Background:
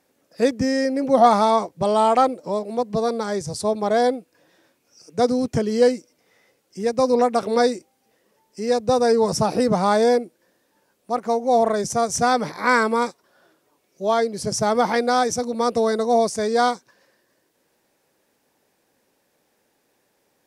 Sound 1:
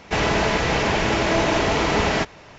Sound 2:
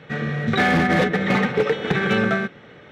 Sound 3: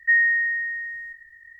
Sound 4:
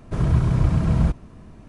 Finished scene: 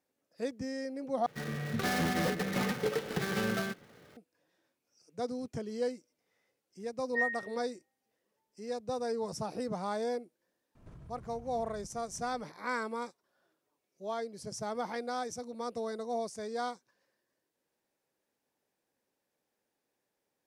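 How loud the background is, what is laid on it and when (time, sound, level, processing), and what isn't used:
background -17 dB
1.26 replace with 2 -12 dB + switching dead time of 0.16 ms
7.07 add 3 -12.5 dB + spectral expander 4:1
10.75 add 4 -15.5 dB + compressor 12:1, threshold -32 dBFS
not used: 1

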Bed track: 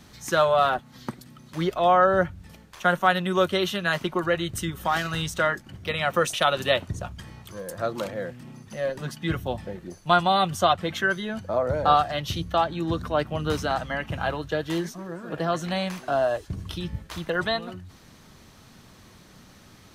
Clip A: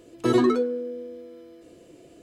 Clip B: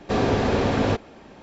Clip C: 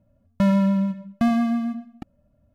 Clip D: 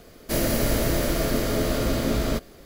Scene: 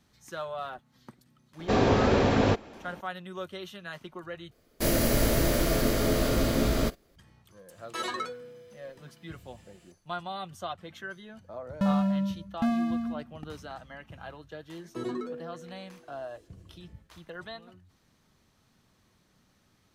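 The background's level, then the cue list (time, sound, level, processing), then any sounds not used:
bed track -16 dB
1.59 add B -1.5 dB
4.51 replace with D -1.5 dB + gate -41 dBFS, range -15 dB
7.7 add A -0.5 dB + HPF 1200 Hz
11.41 add C -7 dB + notch 2200 Hz, Q 14
14.71 add A -14.5 dB

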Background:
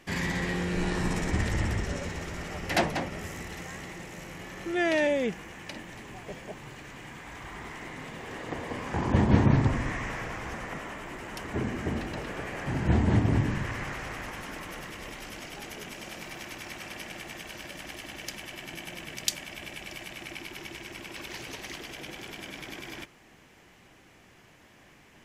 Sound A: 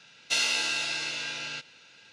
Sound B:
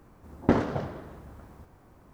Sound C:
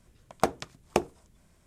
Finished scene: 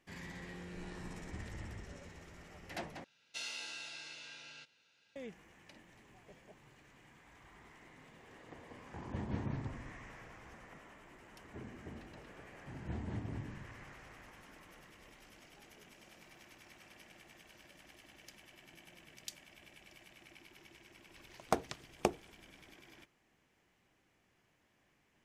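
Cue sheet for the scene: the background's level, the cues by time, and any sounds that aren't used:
background -18 dB
3.04 replace with A -17 dB
21.09 add C -7.5 dB + vocal rider
not used: B

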